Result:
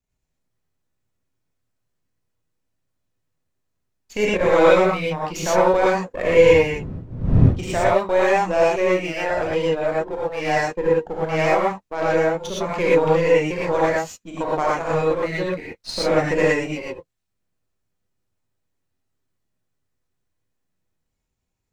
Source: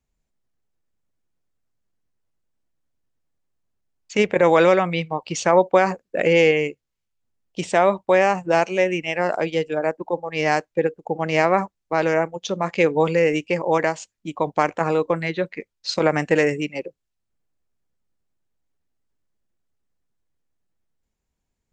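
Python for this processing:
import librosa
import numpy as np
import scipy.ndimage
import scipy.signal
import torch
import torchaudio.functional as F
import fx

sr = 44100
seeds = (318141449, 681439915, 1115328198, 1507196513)

y = np.where(x < 0.0, 10.0 ** (-7.0 / 20.0) * x, x)
y = fx.dmg_wind(y, sr, seeds[0], corner_hz=150.0, level_db=-24.0, at=(6.27, 7.81), fade=0.02)
y = fx.rev_gated(y, sr, seeds[1], gate_ms=140, shape='rising', drr_db=-6.5)
y = F.gain(torch.from_numpy(y), -3.5).numpy()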